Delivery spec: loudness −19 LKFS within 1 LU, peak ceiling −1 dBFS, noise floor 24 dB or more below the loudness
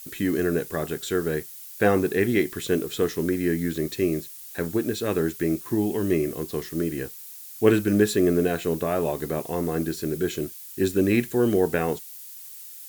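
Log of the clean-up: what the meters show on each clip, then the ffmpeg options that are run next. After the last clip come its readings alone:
background noise floor −42 dBFS; target noise floor −49 dBFS; integrated loudness −25.0 LKFS; sample peak −4.0 dBFS; target loudness −19.0 LKFS
→ -af "afftdn=noise_reduction=7:noise_floor=-42"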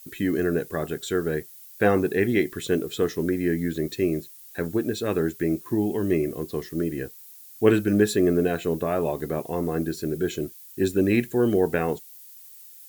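background noise floor −47 dBFS; target noise floor −49 dBFS
→ -af "afftdn=noise_reduction=6:noise_floor=-47"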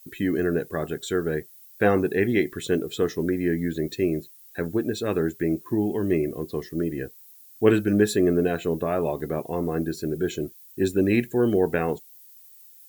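background noise floor −50 dBFS; integrated loudness −25.0 LKFS; sample peak −4.0 dBFS; target loudness −19.0 LKFS
→ -af "volume=6dB,alimiter=limit=-1dB:level=0:latency=1"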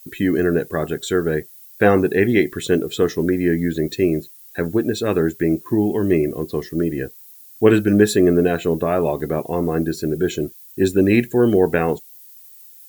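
integrated loudness −19.5 LKFS; sample peak −1.0 dBFS; background noise floor −44 dBFS

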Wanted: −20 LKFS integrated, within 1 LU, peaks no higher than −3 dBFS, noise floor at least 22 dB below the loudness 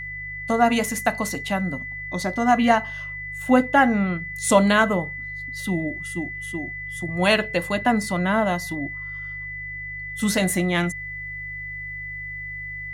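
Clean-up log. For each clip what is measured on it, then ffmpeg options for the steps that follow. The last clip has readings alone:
mains hum 50 Hz; hum harmonics up to 150 Hz; level of the hum −40 dBFS; interfering tone 2,000 Hz; level of the tone −31 dBFS; integrated loudness −23.5 LKFS; sample peak −4.0 dBFS; target loudness −20.0 LKFS
→ -af "bandreject=frequency=50:width_type=h:width=4,bandreject=frequency=100:width_type=h:width=4,bandreject=frequency=150:width_type=h:width=4"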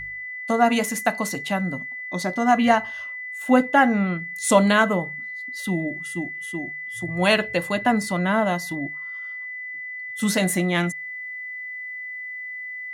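mains hum none found; interfering tone 2,000 Hz; level of the tone −31 dBFS
→ -af "bandreject=frequency=2000:width=30"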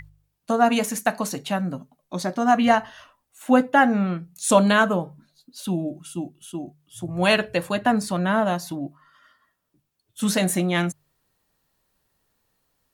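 interfering tone none found; integrated loudness −22.5 LKFS; sample peak −4.5 dBFS; target loudness −20.0 LKFS
→ -af "volume=2.5dB,alimiter=limit=-3dB:level=0:latency=1"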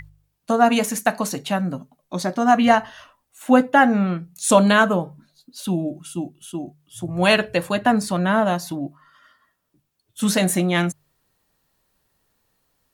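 integrated loudness −20.0 LKFS; sample peak −3.0 dBFS; background noise floor −73 dBFS

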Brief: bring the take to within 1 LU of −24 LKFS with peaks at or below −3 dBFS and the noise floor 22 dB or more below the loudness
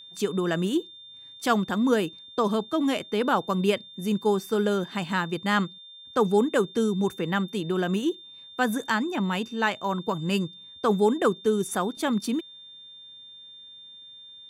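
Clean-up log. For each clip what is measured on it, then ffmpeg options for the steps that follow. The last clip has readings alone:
interfering tone 3,600 Hz; level of the tone −44 dBFS; integrated loudness −26.5 LKFS; sample peak −9.5 dBFS; target loudness −24.0 LKFS
→ -af "bandreject=frequency=3600:width=30"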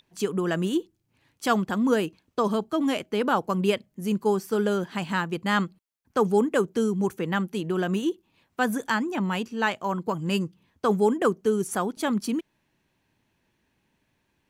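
interfering tone none found; integrated loudness −26.5 LKFS; sample peak −9.5 dBFS; target loudness −24.0 LKFS
→ -af "volume=2.5dB"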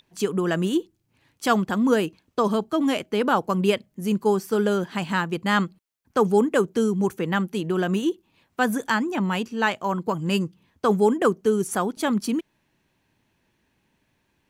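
integrated loudness −24.0 LKFS; sample peak −7.0 dBFS; background noise floor −71 dBFS

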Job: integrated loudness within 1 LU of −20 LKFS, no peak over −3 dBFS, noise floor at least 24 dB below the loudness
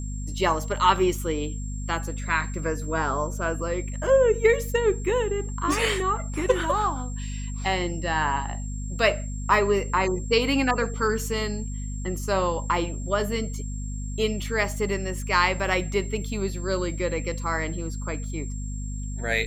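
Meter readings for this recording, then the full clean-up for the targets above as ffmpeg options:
mains hum 50 Hz; hum harmonics up to 250 Hz; level of the hum −29 dBFS; interfering tone 7,500 Hz; level of the tone −42 dBFS; integrated loudness −26.0 LKFS; sample peak −6.5 dBFS; target loudness −20.0 LKFS
→ -af "bandreject=frequency=50:width_type=h:width=4,bandreject=frequency=100:width_type=h:width=4,bandreject=frequency=150:width_type=h:width=4,bandreject=frequency=200:width_type=h:width=4,bandreject=frequency=250:width_type=h:width=4"
-af "bandreject=frequency=7500:width=30"
-af "volume=6dB,alimiter=limit=-3dB:level=0:latency=1"

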